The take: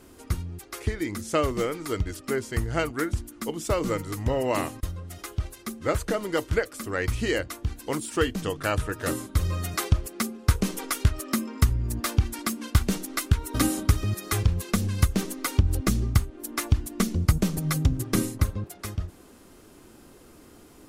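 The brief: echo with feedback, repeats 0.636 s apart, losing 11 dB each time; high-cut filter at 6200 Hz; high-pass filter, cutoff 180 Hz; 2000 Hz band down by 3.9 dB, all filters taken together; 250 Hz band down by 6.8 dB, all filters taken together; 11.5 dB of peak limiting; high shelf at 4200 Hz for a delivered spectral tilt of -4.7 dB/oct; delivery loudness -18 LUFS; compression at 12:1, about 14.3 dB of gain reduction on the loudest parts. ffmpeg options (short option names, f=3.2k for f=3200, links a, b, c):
-af "highpass=180,lowpass=6.2k,equalizer=f=250:t=o:g=-7.5,equalizer=f=2k:t=o:g=-4,highshelf=f=4.2k:g=-4,acompressor=threshold=-38dB:ratio=12,alimiter=level_in=9.5dB:limit=-24dB:level=0:latency=1,volume=-9.5dB,aecho=1:1:636|1272|1908:0.282|0.0789|0.0221,volume=28dB"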